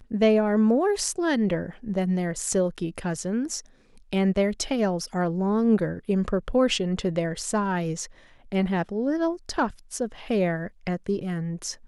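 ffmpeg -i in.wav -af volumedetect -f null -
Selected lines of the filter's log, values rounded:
mean_volume: -25.3 dB
max_volume: -8.2 dB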